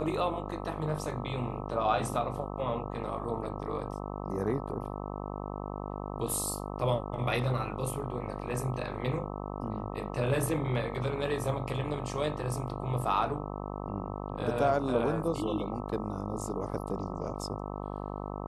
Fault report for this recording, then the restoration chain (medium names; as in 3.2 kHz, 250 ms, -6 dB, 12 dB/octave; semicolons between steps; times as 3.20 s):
buzz 50 Hz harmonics 26 -38 dBFS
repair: de-hum 50 Hz, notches 26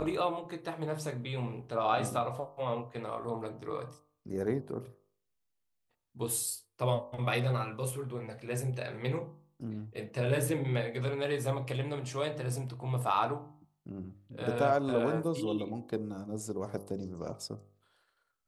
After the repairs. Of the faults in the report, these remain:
nothing left